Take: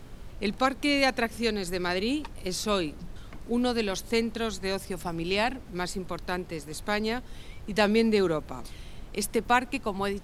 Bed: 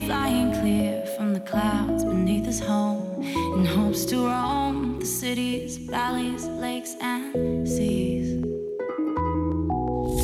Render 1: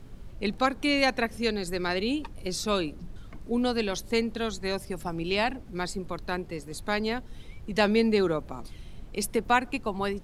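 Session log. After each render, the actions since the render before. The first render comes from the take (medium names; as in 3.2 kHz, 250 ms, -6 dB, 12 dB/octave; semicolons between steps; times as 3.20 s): noise reduction 6 dB, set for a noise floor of -45 dBFS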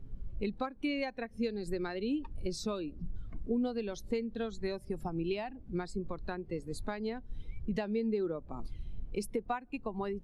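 compression 12:1, threshold -33 dBFS, peak gain reduction 17.5 dB; spectral contrast expander 1.5:1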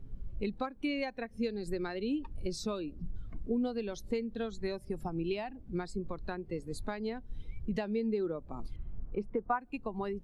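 8.76–9.61 s: resonant low-pass 1.3 kHz, resonance Q 2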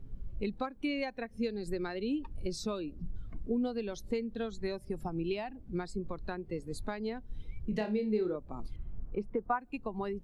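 7.69–8.36 s: flutter echo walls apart 4.8 m, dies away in 0.26 s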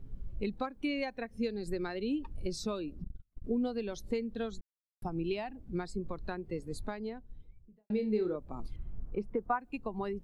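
3.04–3.44 s: gate -34 dBFS, range -39 dB; 4.61–5.02 s: mute; 6.63–7.90 s: studio fade out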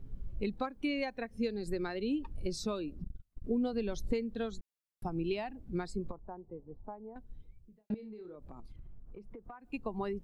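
3.73–4.13 s: bass shelf 150 Hz +9.5 dB; 6.11–7.16 s: four-pole ladder low-pass 1 kHz, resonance 55%; 7.94–9.72 s: compression 12:1, threshold -44 dBFS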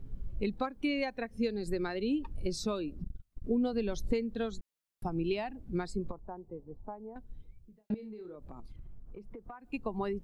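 trim +2 dB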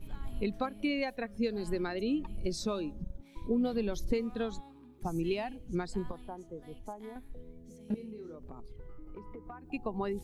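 add bed -28.5 dB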